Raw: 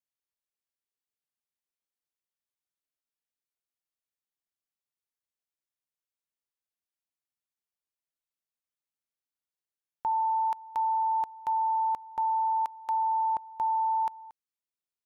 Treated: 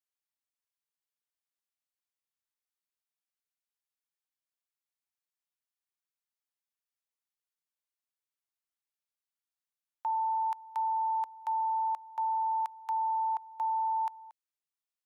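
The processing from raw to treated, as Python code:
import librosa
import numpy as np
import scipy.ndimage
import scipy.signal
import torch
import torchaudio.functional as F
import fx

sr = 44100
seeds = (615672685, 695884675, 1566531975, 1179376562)

y = scipy.signal.sosfilt(scipy.signal.butter(4, 720.0, 'highpass', fs=sr, output='sos'), x)
y = y * 10.0 ** (-2.5 / 20.0)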